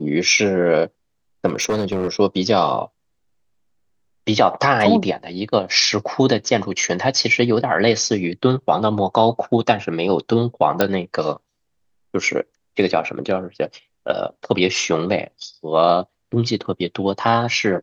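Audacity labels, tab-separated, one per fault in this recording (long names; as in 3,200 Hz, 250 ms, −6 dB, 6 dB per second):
1.460000	2.080000	clipping −15.5 dBFS
10.810000	10.810000	click −3 dBFS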